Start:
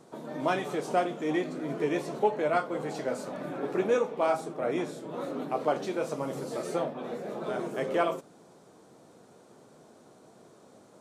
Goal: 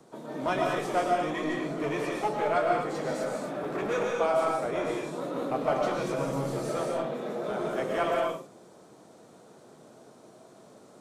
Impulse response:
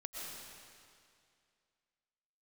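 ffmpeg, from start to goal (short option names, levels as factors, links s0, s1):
-filter_complex "[0:a]asettb=1/sr,asplit=3[s0][s1][s2];[s0]atrim=end=5.504[s3];[s1]atrim=start=5.5:end=6.59,asetpts=PTS-STARTPTS,afade=t=in:d=0.004:c=qsin,afade=t=out:st=1.086:d=0.004:c=qsin,lowshelf=f=180:g=8[s4];[s2]atrim=start=6.586[s5];[s3][s4]acrossfade=d=0.004:c1=hsin:c2=qsin[s6];[s6][s5]acrossfade=d=0.004:c1=qsin:c2=hsin,acrossover=split=180|480|5500[s7][s8][s9][s10];[s8]aeval=exprs='0.0211*(abs(mod(val(0)/0.0211+3,4)-2)-1)':c=same[s11];[s7][s11][s9][s10]amix=inputs=4:normalize=0[s12];[1:a]atrim=start_sample=2205,afade=t=out:st=0.32:d=0.01,atrim=end_sample=14553[s13];[s12][s13]afir=irnorm=-1:irlink=0,volume=1.68"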